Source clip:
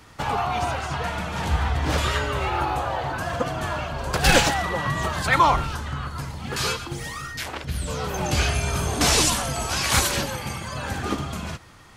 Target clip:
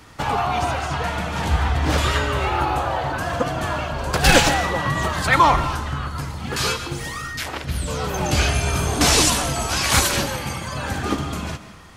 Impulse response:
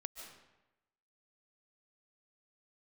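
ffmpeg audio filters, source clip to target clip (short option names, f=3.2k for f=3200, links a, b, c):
-filter_complex "[0:a]asplit=2[a][b];[b]equalizer=f=290:w=4.6:g=5.5[c];[1:a]atrim=start_sample=2205[d];[c][d]afir=irnorm=-1:irlink=0,volume=-0.5dB[e];[a][e]amix=inputs=2:normalize=0,volume=-1dB"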